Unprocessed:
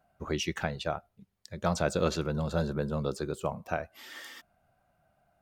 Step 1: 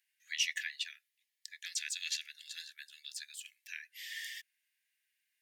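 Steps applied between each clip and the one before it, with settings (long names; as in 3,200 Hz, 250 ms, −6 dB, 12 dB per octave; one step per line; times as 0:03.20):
Chebyshev high-pass filter 1,700 Hz, order 8
level +3.5 dB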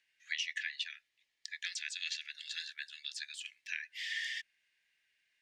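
downward compressor 8 to 1, threshold −40 dBFS, peak gain reduction 13 dB
high-frequency loss of the air 110 metres
level +8.5 dB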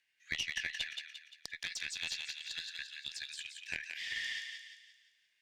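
harmonic generator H 2 −11 dB, 7 −32 dB, 8 −40 dB, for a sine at −20.5 dBFS
feedback echo with a high-pass in the loop 174 ms, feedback 47%, high-pass 1,100 Hz, level −4.5 dB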